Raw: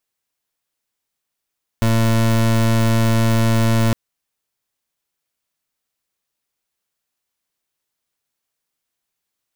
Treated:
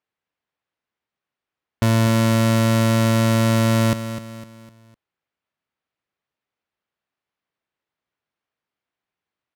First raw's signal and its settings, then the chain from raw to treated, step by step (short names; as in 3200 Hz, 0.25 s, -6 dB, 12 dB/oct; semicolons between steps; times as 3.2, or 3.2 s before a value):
pulse 113 Hz, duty 28% -15 dBFS 2.11 s
low-pass opened by the level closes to 2500 Hz, open at -21 dBFS; HPF 56 Hz; on a send: feedback echo 0.253 s, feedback 41%, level -11 dB